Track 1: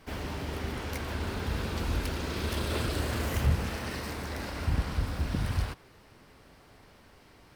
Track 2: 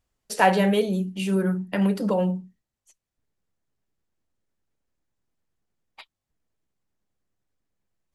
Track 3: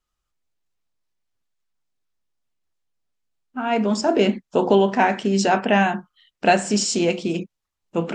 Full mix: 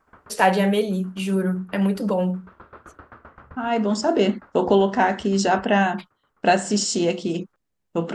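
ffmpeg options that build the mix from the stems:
-filter_complex "[0:a]lowpass=f=1.3k:t=q:w=3.7,lowshelf=f=190:g=-8.5,aeval=exprs='val(0)*pow(10,-22*if(lt(mod(7.7*n/s,1),2*abs(7.7)/1000),1-mod(7.7*n/s,1)/(2*abs(7.7)/1000),(mod(7.7*n/s,1)-2*abs(7.7)/1000)/(1-2*abs(7.7)/1000))/20)':c=same,volume=-8dB[a];[1:a]volume=1dB,asplit=2[b][c];[2:a]bandreject=f=2.4k:w=5.2,agate=range=-19dB:threshold=-38dB:ratio=16:detection=peak,volume=-1dB[d];[c]apad=whole_len=333348[e];[a][e]sidechaincompress=threshold=-28dB:ratio=8:attack=16:release=420[f];[f][b][d]amix=inputs=3:normalize=0"

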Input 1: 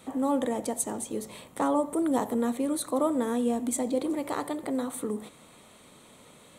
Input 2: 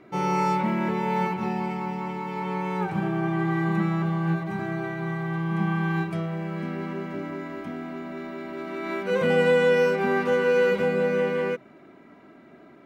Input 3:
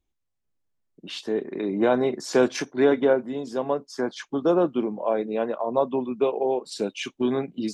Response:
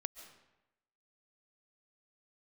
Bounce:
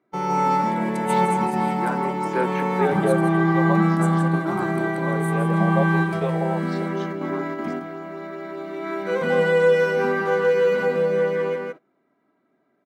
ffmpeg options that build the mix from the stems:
-filter_complex "[0:a]acompressor=threshold=-34dB:ratio=6,adelay=300,volume=-1.5dB,asplit=3[a][b][c];[a]atrim=end=3.29,asetpts=PTS-STARTPTS,afade=t=out:st=3.286:d=0.004:c=hsin[d];[b]atrim=start=3.29:end=3.82,asetpts=PTS-STARTPTS,volume=0[e];[c]atrim=start=3.82,asetpts=PTS-STARTPTS,afade=t=in:d=0.004:c=hsin[f];[d][e][f]concat=n=3:v=0:a=1,asplit=2[g][h];[h]volume=-9dB[i];[1:a]equalizer=f=2.6k:w=3.6:g=-5.5,volume=3dB,asplit=3[j][k][l];[k]volume=-13.5dB[m];[l]volume=-7.5dB[n];[2:a]acrossover=split=380 3800:gain=0.178 1 0.158[o][p][q];[o][p][q]amix=inputs=3:normalize=0,asplit=2[r][s];[s]afreqshift=0.36[t];[r][t]amix=inputs=2:normalize=1,volume=-1.5dB,asplit=2[u][v];[v]apad=whole_len=566832[w];[j][w]sidechaingate=range=-7dB:threshold=-49dB:ratio=16:detection=peak[x];[3:a]atrim=start_sample=2205[y];[m][y]afir=irnorm=-1:irlink=0[z];[i][n]amix=inputs=2:normalize=0,aecho=0:1:164:1[aa];[g][x][u][z][aa]amix=inputs=5:normalize=0,highpass=120,agate=range=-19dB:threshold=-37dB:ratio=16:detection=peak,equalizer=f=990:w=0.65:g=3"

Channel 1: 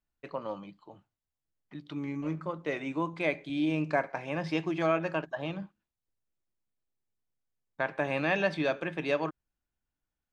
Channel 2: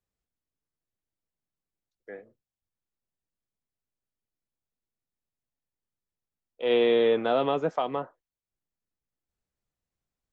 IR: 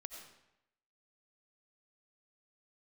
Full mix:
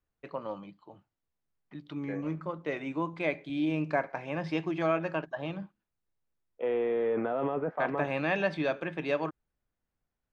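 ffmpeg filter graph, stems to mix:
-filter_complex "[0:a]lowpass=f=3.9k:p=1,volume=-0.5dB[a];[1:a]lowpass=f=2.1k:w=0.5412,lowpass=f=2.1k:w=1.3066,alimiter=limit=-24dB:level=0:latency=1:release=15,volume=1.5dB[b];[a][b]amix=inputs=2:normalize=0"

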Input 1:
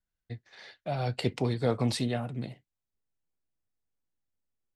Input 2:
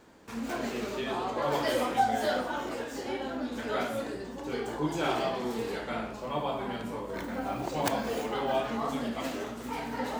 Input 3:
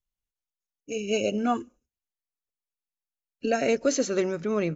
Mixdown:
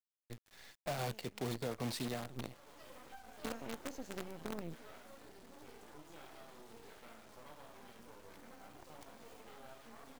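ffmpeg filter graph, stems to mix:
-filter_complex "[0:a]volume=-4dB,asplit=2[a][b];[1:a]acompressor=threshold=-39dB:ratio=5,adelay=1150,volume=-10dB,afade=t=in:st=2.54:d=0.39:silence=0.281838[c];[2:a]acrossover=split=230[d][e];[e]acompressor=threshold=-38dB:ratio=10[f];[d][f]amix=inputs=2:normalize=0,volume=-7.5dB[g];[b]apad=whole_len=209816[h];[g][h]sidechaincompress=threshold=-42dB:ratio=8:attack=9.6:release=274[i];[a][c][i]amix=inputs=3:normalize=0,lowshelf=f=140:g=-6.5,acrusher=bits=7:dc=4:mix=0:aa=0.000001,alimiter=level_in=5.5dB:limit=-24dB:level=0:latency=1:release=324,volume=-5.5dB"

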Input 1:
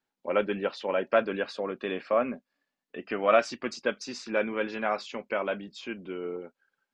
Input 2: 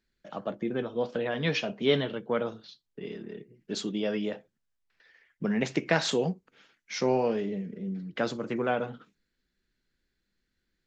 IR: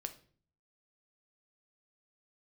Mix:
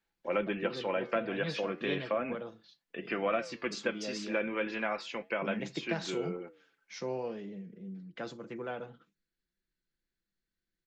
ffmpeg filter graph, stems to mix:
-filter_complex "[0:a]equalizer=f=2.2k:t=o:w=1.2:g=5,flanger=delay=4.5:depth=8.5:regen=-86:speed=0.36:shape=sinusoidal,volume=1.5dB[a];[1:a]volume=-11dB[b];[a][b]amix=inputs=2:normalize=0,aecho=1:1:5.9:0.33,acrossover=split=370[c][d];[d]acompressor=threshold=-30dB:ratio=6[e];[c][e]amix=inputs=2:normalize=0"

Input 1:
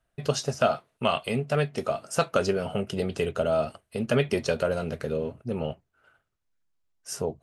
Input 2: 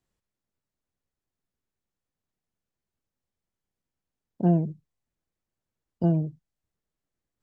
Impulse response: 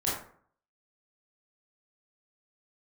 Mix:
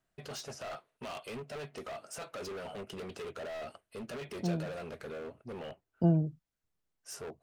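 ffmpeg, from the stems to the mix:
-filter_complex "[0:a]bass=f=250:g=-9,treble=f=4k:g=-3,alimiter=limit=-21dB:level=0:latency=1:release=12,asoftclip=type=hard:threshold=-33.5dB,volume=-5.5dB,asplit=2[a][b];[1:a]volume=-3dB[c];[b]apad=whole_len=327374[d];[c][d]sidechaincompress=threshold=-50dB:ratio=8:attack=16:release=410[e];[a][e]amix=inputs=2:normalize=0"

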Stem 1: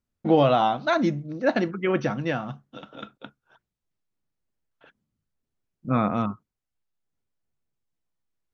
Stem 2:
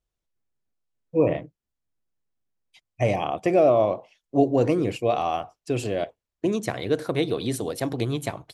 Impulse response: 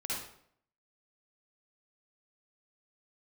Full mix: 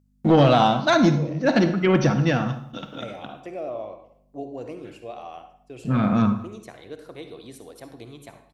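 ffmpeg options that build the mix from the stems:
-filter_complex "[0:a]agate=range=-10dB:threshold=-55dB:ratio=16:detection=peak,bass=f=250:g=12,treble=f=4k:g=10,asoftclip=type=tanh:threshold=-11dB,volume=3dB,asplit=3[a][b][c];[b]volume=-10.5dB[d];[c]volume=-23dB[e];[1:a]agate=range=-13dB:threshold=-39dB:ratio=16:detection=peak,aeval=exprs='val(0)+0.00794*(sin(2*PI*50*n/s)+sin(2*PI*2*50*n/s)/2+sin(2*PI*3*50*n/s)/3+sin(2*PI*4*50*n/s)/4+sin(2*PI*5*50*n/s)/5)':c=same,volume=-15.5dB,asplit=3[f][g][h];[g]volume=-8.5dB[i];[h]apad=whole_len=376470[j];[a][j]sidechaincompress=threshold=-41dB:ratio=8:attack=12:release=352[k];[2:a]atrim=start_sample=2205[l];[d][i]amix=inputs=2:normalize=0[m];[m][l]afir=irnorm=-1:irlink=0[n];[e]aecho=0:1:209:1[o];[k][f][n][o]amix=inputs=4:normalize=0,lowshelf=f=170:g=-8"

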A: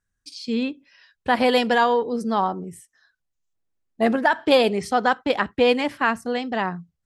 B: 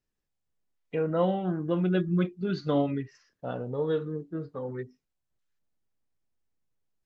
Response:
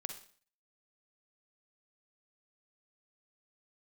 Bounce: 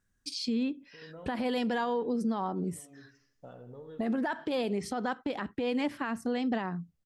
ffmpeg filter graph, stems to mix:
-filter_complex "[0:a]equalizer=f=250:t=o:w=1.3:g=6.5,alimiter=limit=-11dB:level=0:latency=1:release=36,acompressor=threshold=-22dB:ratio=4,volume=2dB,asplit=2[a][b];[1:a]acompressor=threshold=-35dB:ratio=16,volume=-9dB,asplit=2[c][d];[d]volume=-11dB[e];[b]apad=whole_len=310909[f];[c][f]sidechaincompress=threshold=-42dB:ratio=8:attack=16:release=324[g];[e]aecho=0:1:82|164|246|328|410:1|0.38|0.144|0.0549|0.0209[h];[a][g][h]amix=inputs=3:normalize=0,alimiter=limit=-23dB:level=0:latency=1:release=467"

